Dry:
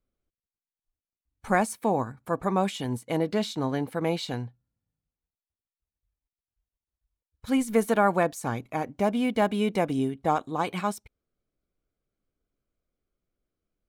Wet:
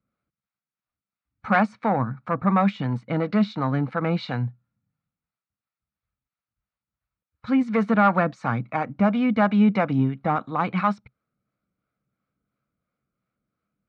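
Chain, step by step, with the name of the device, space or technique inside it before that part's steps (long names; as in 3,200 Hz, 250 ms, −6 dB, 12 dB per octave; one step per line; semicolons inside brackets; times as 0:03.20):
guitar amplifier with harmonic tremolo (two-band tremolo in antiphase 2.9 Hz, depth 50%, crossover 420 Hz; soft clipping −17.5 dBFS, distortion −16 dB; loudspeaker in its box 89–4,000 Hz, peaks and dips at 130 Hz +8 dB, 200 Hz +8 dB, 390 Hz −8 dB, 1,300 Hz +10 dB, 2,200 Hz +3 dB, 3,200 Hz −7 dB)
level +5.5 dB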